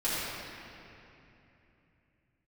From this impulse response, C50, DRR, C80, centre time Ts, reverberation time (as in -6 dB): -5.0 dB, -12.5 dB, -3.0 dB, 0.192 s, 3.0 s